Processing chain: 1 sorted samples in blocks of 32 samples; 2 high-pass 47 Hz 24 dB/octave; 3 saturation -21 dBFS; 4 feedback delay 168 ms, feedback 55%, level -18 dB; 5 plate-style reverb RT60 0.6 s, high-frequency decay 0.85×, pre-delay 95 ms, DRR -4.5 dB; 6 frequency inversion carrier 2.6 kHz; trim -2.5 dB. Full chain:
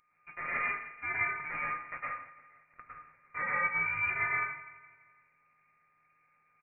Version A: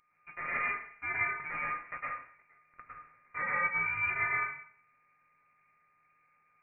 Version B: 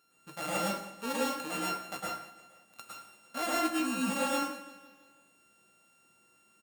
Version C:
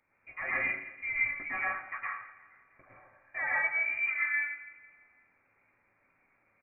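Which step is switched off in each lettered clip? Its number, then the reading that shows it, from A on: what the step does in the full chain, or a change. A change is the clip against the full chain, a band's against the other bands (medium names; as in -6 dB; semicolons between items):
4, momentary loudness spread change -3 LU; 6, 250 Hz band +18.5 dB; 1, momentary loudness spread change -7 LU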